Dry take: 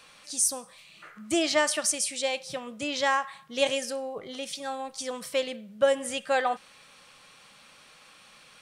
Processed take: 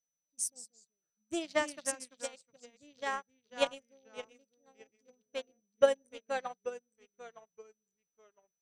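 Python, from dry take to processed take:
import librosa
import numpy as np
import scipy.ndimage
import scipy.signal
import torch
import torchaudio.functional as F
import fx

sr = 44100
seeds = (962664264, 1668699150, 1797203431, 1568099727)

y = fx.wiener(x, sr, points=41)
y = fx.echo_pitch(y, sr, ms=122, semitones=-2, count=2, db_per_echo=-6.0)
y = y + 10.0 ** (-48.0 / 20.0) * np.sin(2.0 * np.pi * 6000.0 * np.arange(len(y)) / sr)
y = fx.upward_expand(y, sr, threshold_db=-44.0, expansion=2.5)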